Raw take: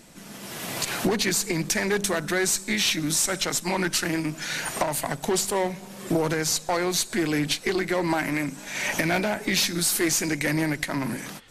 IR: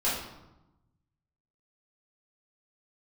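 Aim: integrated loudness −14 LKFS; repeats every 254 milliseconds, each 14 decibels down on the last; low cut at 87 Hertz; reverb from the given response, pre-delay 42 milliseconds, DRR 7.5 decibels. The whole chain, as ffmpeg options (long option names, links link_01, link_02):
-filter_complex "[0:a]highpass=87,aecho=1:1:254|508:0.2|0.0399,asplit=2[link_01][link_02];[1:a]atrim=start_sample=2205,adelay=42[link_03];[link_02][link_03]afir=irnorm=-1:irlink=0,volume=-17.5dB[link_04];[link_01][link_04]amix=inputs=2:normalize=0,volume=10dB"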